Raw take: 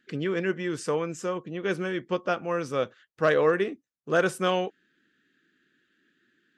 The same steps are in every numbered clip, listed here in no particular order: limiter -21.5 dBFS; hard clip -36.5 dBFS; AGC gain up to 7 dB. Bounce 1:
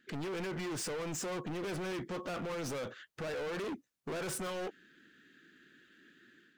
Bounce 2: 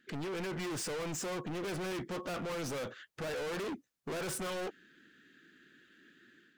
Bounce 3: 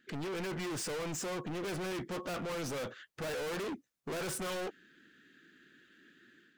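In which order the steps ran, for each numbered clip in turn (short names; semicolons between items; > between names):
AGC > limiter > hard clip; limiter > AGC > hard clip; AGC > hard clip > limiter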